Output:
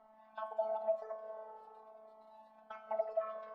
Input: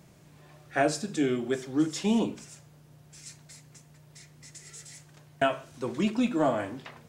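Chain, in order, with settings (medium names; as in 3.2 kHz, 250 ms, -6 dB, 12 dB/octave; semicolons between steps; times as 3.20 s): speed mistake 7.5 ips tape played at 15 ips; feedback comb 230 Hz, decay 0.74 s, harmonics odd, mix 70%; peak limiter -32 dBFS, peak gain reduction 11 dB; reverberation RT60 4.1 s, pre-delay 47 ms, DRR 12 dB; robot voice 218 Hz; compression 6:1, threshold -46 dBFS, peak gain reduction 9.5 dB; low-pass 1 kHz 12 dB/octave; resonant low shelf 500 Hz -11.5 dB, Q 3; Shepard-style flanger falling 0.45 Hz; trim +14 dB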